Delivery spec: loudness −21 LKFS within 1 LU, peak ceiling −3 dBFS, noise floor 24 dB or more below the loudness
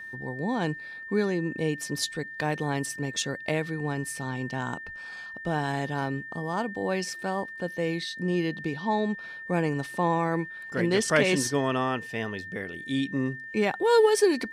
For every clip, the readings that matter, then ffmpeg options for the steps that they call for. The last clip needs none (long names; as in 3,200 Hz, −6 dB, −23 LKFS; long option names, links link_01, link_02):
interfering tone 1,800 Hz; level of the tone −38 dBFS; integrated loudness −28.5 LKFS; sample peak −9.5 dBFS; target loudness −21.0 LKFS
→ -af "bandreject=frequency=1800:width=30"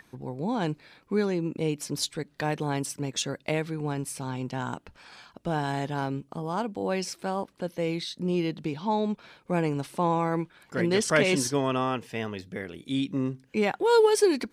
interfering tone none found; integrated loudness −28.5 LKFS; sample peak −9.5 dBFS; target loudness −21.0 LKFS
→ -af "volume=7.5dB,alimiter=limit=-3dB:level=0:latency=1"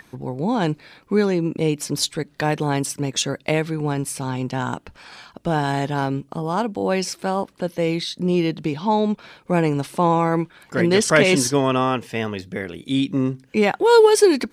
integrated loudness −21.0 LKFS; sample peak −3.0 dBFS; background noise floor −55 dBFS